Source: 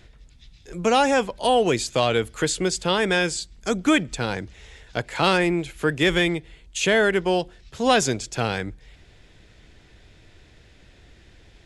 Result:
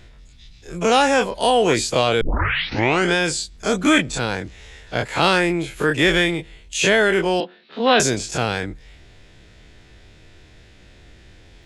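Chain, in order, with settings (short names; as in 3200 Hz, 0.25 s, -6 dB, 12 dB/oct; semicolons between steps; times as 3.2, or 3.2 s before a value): spectral dilation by 60 ms; 2.21 tape start 0.94 s; 7.4–8 Chebyshev band-pass 200–4100 Hz, order 4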